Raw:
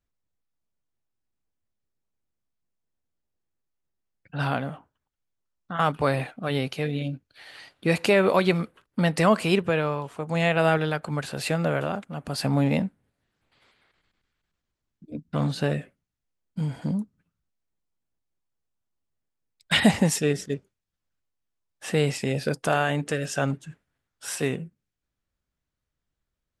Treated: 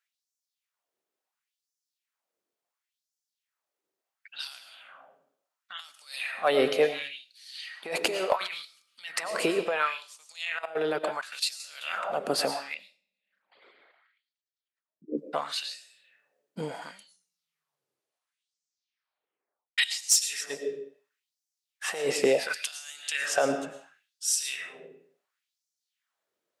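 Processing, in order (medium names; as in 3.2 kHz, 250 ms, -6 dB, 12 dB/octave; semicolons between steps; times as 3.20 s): 12.74–15.18 s: resonances exaggerated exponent 2; compressor with a negative ratio -25 dBFS, ratio -0.5; reverberation RT60 0.70 s, pre-delay 70 ms, DRR 7.5 dB; 10.32–11.60 s: level held to a coarse grid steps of 15 dB; 16.91 s: tape stop 2.87 s; LFO high-pass sine 0.71 Hz 380–5900 Hz; overload inside the chain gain 13 dB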